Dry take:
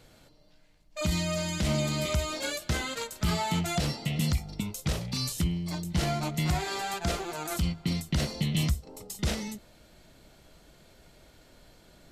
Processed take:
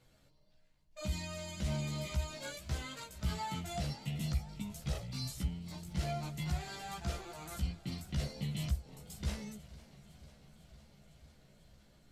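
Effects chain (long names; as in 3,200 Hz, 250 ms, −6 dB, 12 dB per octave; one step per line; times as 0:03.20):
multi-voice chorus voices 6, 0.42 Hz, delay 15 ms, depth 1.1 ms
feedback echo with a swinging delay time 502 ms, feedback 75%, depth 131 cents, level −19 dB
level −8.5 dB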